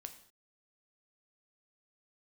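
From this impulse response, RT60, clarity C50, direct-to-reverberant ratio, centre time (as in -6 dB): no single decay rate, 11.5 dB, 7.0 dB, 9 ms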